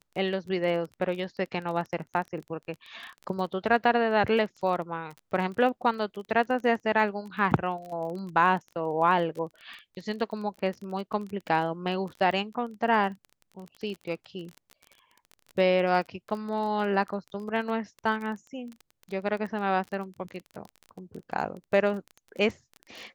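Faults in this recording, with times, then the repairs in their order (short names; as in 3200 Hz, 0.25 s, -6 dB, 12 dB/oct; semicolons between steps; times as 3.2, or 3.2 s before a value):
crackle 24/s -35 dBFS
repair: de-click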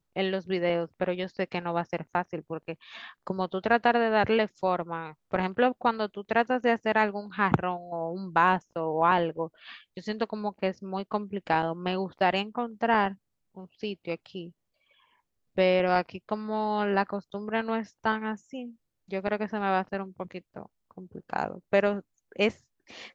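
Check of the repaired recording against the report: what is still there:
none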